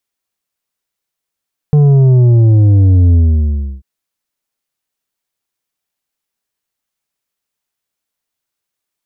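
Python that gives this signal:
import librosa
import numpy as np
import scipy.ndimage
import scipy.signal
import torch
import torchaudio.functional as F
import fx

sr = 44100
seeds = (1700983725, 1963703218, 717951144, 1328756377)

y = fx.sub_drop(sr, level_db=-5.5, start_hz=150.0, length_s=2.09, drive_db=7, fade_s=0.68, end_hz=65.0)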